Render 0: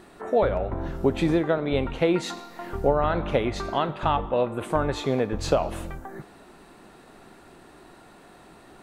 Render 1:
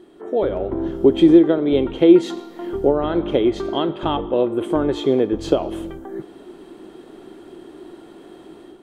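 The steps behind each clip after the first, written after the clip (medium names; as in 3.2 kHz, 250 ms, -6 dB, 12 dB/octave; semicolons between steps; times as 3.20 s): level rider gain up to 8 dB; small resonant body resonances 340/3200 Hz, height 17 dB, ringing for 25 ms; trim -9 dB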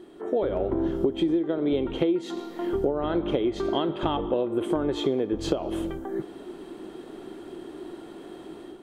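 compression 10:1, threshold -21 dBFS, peak gain reduction 16 dB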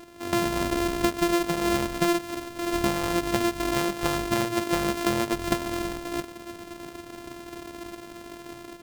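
sorted samples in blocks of 128 samples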